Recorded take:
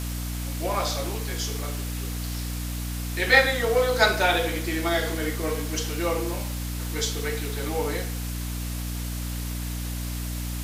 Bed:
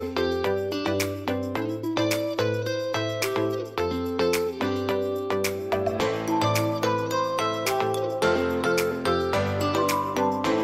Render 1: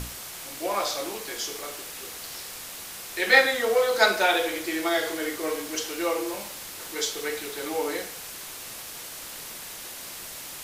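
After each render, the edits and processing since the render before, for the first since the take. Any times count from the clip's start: notches 60/120/180/240/300 Hz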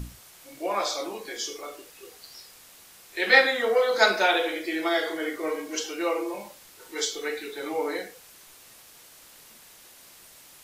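noise print and reduce 12 dB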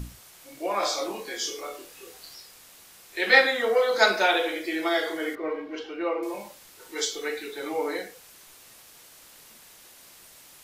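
0.8–2.35 doubler 26 ms -3 dB; 5.35–6.23 air absorption 360 m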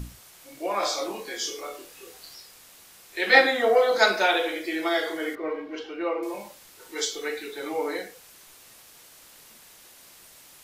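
3.35–3.98 small resonant body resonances 330/680 Hz, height 11 dB, ringing for 30 ms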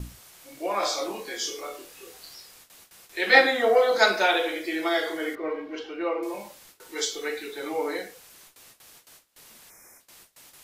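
gate with hold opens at -40 dBFS; 9.7–10 spectral gain 2500–5100 Hz -24 dB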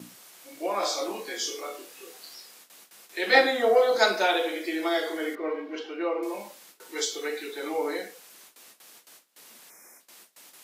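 HPF 190 Hz 24 dB/oct; dynamic EQ 1900 Hz, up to -4 dB, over -34 dBFS, Q 0.76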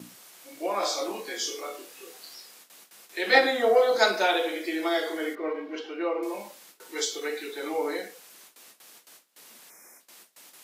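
ending taper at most 200 dB/s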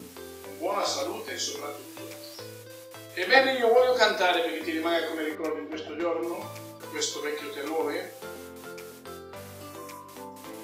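add bed -18.5 dB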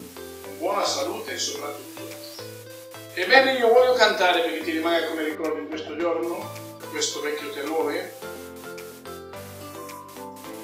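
gain +4 dB

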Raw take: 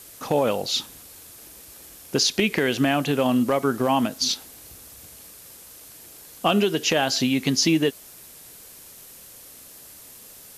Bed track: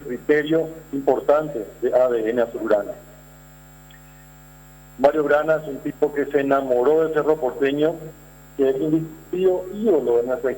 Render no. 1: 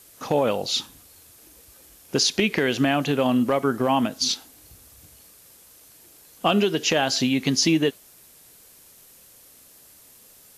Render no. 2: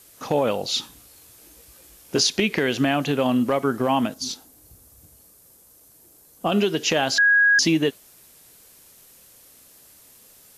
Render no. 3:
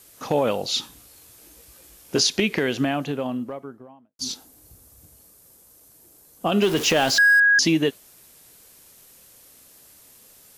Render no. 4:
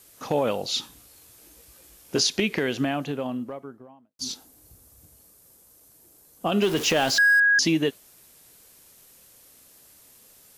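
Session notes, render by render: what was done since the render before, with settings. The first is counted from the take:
noise print and reduce 6 dB
0.81–2.27 doubler 17 ms -5.5 dB; 4.14–6.52 bell 2700 Hz -10 dB 2.3 oct; 7.18–7.59 bleep 1650 Hz -13 dBFS
2.32–4.19 studio fade out; 6.62–7.4 zero-crossing step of -25.5 dBFS
gain -2.5 dB

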